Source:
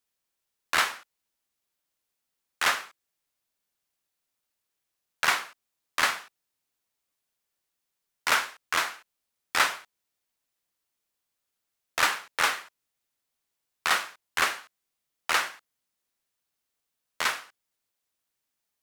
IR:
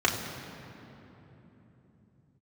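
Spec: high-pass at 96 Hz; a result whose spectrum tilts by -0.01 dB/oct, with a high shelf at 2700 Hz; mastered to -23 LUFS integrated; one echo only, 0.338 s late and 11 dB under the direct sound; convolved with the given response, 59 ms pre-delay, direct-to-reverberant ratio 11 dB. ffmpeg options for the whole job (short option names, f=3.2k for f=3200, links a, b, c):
-filter_complex "[0:a]highpass=96,highshelf=f=2.7k:g=-6,aecho=1:1:338:0.282,asplit=2[a][b];[1:a]atrim=start_sample=2205,adelay=59[c];[b][c]afir=irnorm=-1:irlink=0,volume=-25dB[d];[a][d]amix=inputs=2:normalize=0,volume=7.5dB"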